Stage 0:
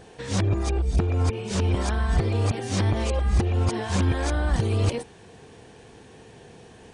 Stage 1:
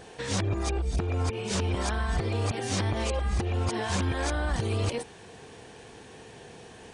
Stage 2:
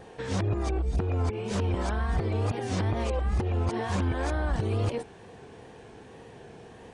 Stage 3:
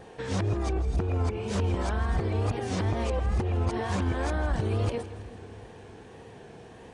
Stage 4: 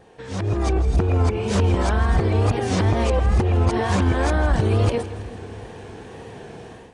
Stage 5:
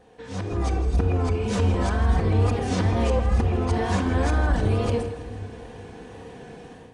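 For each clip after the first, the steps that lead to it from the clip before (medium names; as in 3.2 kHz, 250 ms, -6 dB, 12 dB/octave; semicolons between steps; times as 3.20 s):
bass shelf 430 Hz -5.5 dB; compression 2.5:1, threshold -29 dBFS, peak gain reduction 5.5 dB; trim +3 dB
treble shelf 2.3 kHz -11 dB; wow and flutter 62 cents; trim +1 dB
two-band feedback delay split 350 Hz, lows 375 ms, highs 162 ms, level -15 dB
level rider gain up to 12.5 dB; trim -3.5 dB
simulated room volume 3300 m³, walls furnished, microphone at 1.9 m; trim -5 dB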